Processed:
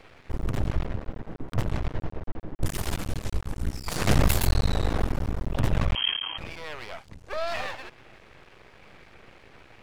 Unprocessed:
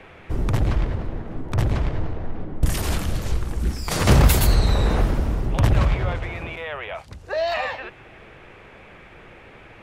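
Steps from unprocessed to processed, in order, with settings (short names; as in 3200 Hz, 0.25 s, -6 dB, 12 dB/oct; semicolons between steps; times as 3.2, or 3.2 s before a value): half-wave rectifier; 5.95–6.38 inverted band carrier 3200 Hz; vibrato 2.5 Hz 6.1 cents; gain -2.5 dB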